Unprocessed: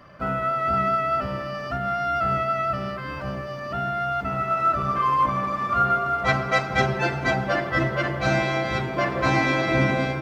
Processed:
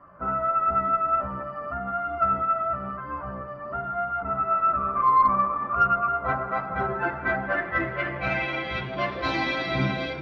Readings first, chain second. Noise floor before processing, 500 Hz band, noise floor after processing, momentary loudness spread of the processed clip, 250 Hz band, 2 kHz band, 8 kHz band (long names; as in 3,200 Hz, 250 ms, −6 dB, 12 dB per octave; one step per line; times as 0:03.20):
−32 dBFS, −5.0 dB, −36 dBFS, 11 LU, −5.5 dB, −3.5 dB, can't be measured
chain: low-pass filter sweep 1,200 Hz → 3,900 Hz, 0:06.72–0:09.24
multi-voice chorus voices 6, 0.39 Hz, delay 14 ms, depth 3.6 ms
harmonic generator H 4 −33 dB, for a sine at −6.5 dBFS
level −3 dB